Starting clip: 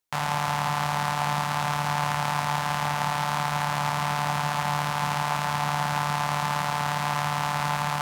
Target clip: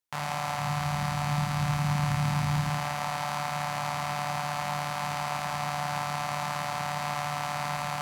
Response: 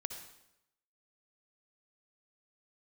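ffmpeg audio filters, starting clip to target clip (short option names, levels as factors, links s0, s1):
-filter_complex "[0:a]asplit=3[s0][s1][s2];[s0]afade=t=out:st=0.58:d=0.02[s3];[s1]asubboost=boost=10:cutoff=210,afade=t=in:st=0.58:d=0.02,afade=t=out:st=2.69:d=0.02[s4];[s2]afade=t=in:st=2.69:d=0.02[s5];[s3][s4][s5]amix=inputs=3:normalize=0[s6];[1:a]atrim=start_sample=2205,asetrate=66150,aresample=44100[s7];[s6][s7]afir=irnorm=-1:irlink=0"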